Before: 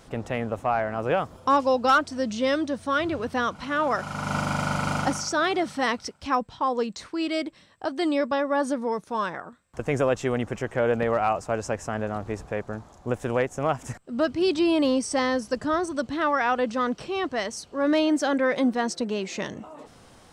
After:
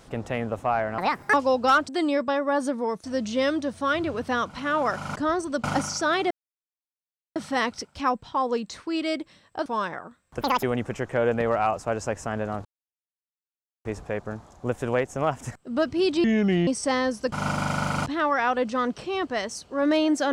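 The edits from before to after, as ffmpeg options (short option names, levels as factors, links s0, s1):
-filter_complex "[0:a]asplit=16[s0][s1][s2][s3][s4][s5][s6][s7][s8][s9][s10][s11][s12][s13][s14][s15];[s0]atrim=end=0.984[s16];[s1]atrim=start=0.98:end=1.54,asetpts=PTS-STARTPTS,asetrate=69237,aresample=44100[s17];[s2]atrim=start=1.536:end=2.092[s18];[s3]atrim=start=7.918:end=9.072[s19];[s4]atrim=start=2.088:end=4.212[s20];[s5]atrim=start=15.598:end=16.082[s21];[s6]atrim=start=4.948:end=5.62,asetpts=PTS-STARTPTS,afade=t=out:st=0.668:d=0.004:c=hsin,apad=pad_dur=1.05[s22];[s7]atrim=start=5.62:end=7.922,asetpts=PTS-STARTPTS,afade=t=in:d=0.004:c=hsin[s23];[s8]atrim=start=9.068:end=9.824[s24];[s9]atrim=start=9.82:end=10.25,asetpts=PTS-STARTPTS,asetrate=85113,aresample=44100,atrim=end_sample=9825,asetpts=PTS-STARTPTS[s25];[s10]atrim=start=10.246:end=12.27,asetpts=PTS-STARTPTS,afade=t=out:st=2.02:d=0.004:c=hsin,apad=pad_dur=1.2[s26];[s11]atrim=start=12.27:end=14.664,asetpts=PTS-STARTPTS,afade=t=in:d=0.004:c=hsin[s27];[s12]atrim=start=14.66:end=14.95,asetpts=PTS-STARTPTS,asetrate=29547,aresample=44100,atrim=end_sample=19088,asetpts=PTS-STARTPTS[s28];[s13]atrim=start=14.946:end=15.602[s29];[s14]atrim=start=4.208:end=4.952[s30];[s15]atrim=start=16.078[s31];[s16][s17]acrossfade=d=0.004:c1=hsin:c2=hsin[s32];[s32][s18]acrossfade=d=0.004:c1=hsin:c2=hsin[s33];[s33][s19]acrossfade=d=0.004:c1=hsin:c2=hsin[s34];[s34][s20]acrossfade=d=0.004:c1=hsin:c2=hsin[s35];[s35][s21]acrossfade=d=0.004:c1=hsin:c2=hsin[s36];[s22][s23]concat=n=2:v=0:a=1[s37];[s36][s37]acrossfade=d=0.004:c1=hsin:c2=hsin[s38];[s38][s24]acrossfade=d=0.004:c1=hsin:c2=hsin[s39];[s39][s25]acrossfade=d=0.004:c1=hsin:c2=hsin[s40];[s26][s27]concat=n=2:v=0:a=1[s41];[s40][s41]acrossfade=d=0.004:c1=hsin:c2=hsin[s42];[s42][s28]acrossfade=d=0.004:c1=hsin:c2=hsin[s43];[s43][s29]acrossfade=d=0.004:c1=hsin:c2=hsin[s44];[s44][s30]acrossfade=d=0.004:c1=hsin:c2=hsin[s45];[s45][s31]acrossfade=d=0.004:c1=hsin:c2=hsin"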